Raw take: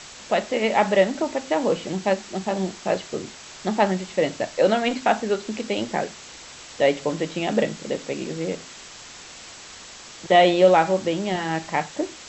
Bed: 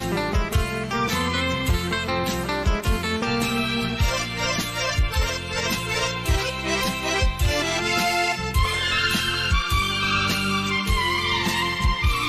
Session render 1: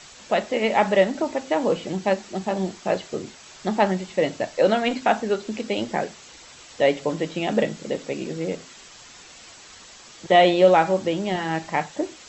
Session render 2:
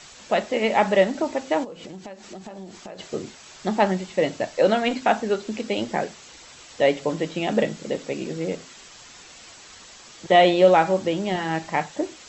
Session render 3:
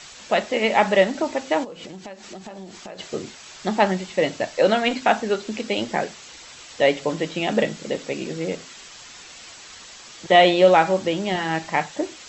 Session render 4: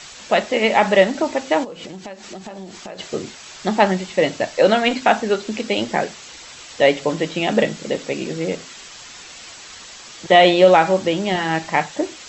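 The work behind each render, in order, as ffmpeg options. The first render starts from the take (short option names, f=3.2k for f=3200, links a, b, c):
-af "afftdn=nr=6:nf=-42"
-filter_complex "[0:a]asplit=3[a][b][c];[a]afade=t=out:st=1.63:d=0.02[d];[b]acompressor=threshold=-34dB:ratio=12:attack=3.2:release=140:knee=1:detection=peak,afade=t=in:st=1.63:d=0.02,afade=t=out:st=2.98:d=0.02[e];[c]afade=t=in:st=2.98:d=0.02[f];[d][e][f]amix=inputs=3:normalize=0"
-af "equalizer=f=3.2k:w=0.35:g=4"
-af "volume=3.5dB,alimiter=limit=-1dB:level=0:latency=1"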